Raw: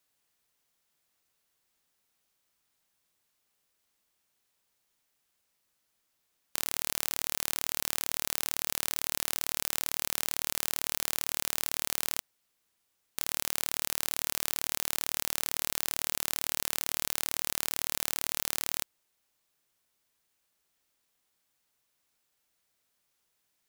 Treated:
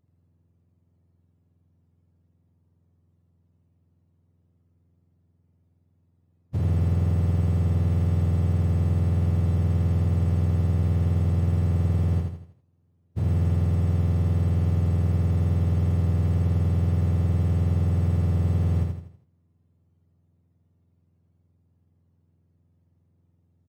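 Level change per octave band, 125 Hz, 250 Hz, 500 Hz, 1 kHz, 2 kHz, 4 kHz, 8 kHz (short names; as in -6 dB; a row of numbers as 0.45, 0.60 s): +34.0 dB, +21.5 dB, +10.0 dB, 0.0 dB, -9.5 dB, under -15 dB, under -20 dB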